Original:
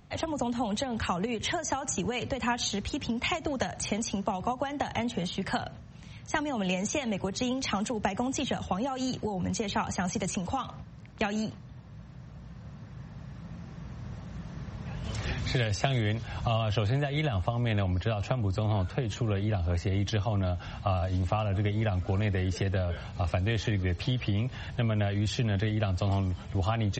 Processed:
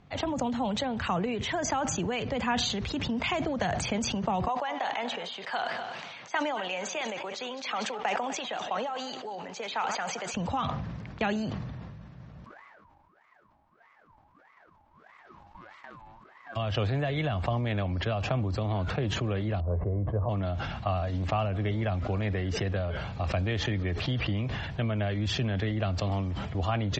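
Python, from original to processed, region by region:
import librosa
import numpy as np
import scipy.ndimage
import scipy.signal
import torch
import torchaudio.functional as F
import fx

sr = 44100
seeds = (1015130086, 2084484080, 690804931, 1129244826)

y = fx.chain(x, sr, fx.reverse_delay_fb(ms=125, feedback_pct=49, wet_db=-13.5),
    fx.bandpass_edges(low_hz=590.0, high_hz=7300.0), at=(4.48, 10.34))
y = fx.envelope_flatten(y, sr, power=0.3, at=(12.44, 16.55), fade=0.02)
y = fx.wah_lfo(y, sr, hz=1.6, low_hz=360.0, high_hz=1600.0, q=14.0, at=(12.44, 16.55), fade=0.02)
y = fx.ring_mod(y, sr, carrier_hz=450.0, at=(12.44, 16.55), fade=0.02)
y = fx.chain(y, sr, fx.lowpass(hz=1000.0, slope=24),
    fx.comb(ms=1.9, depth=0.44), at=(19.6, 20.29))
y = scipy.signal.sosfilt(scipy.signal.bessel(2, 3600.0, 'lowpass', norm='mag', fs=sr, output='sos'), y)
y = fx.low_shelf(y, sr, hz=140.0, db=-4.0)
y = fx.sustainer(y, sr, db_per_s=26.0)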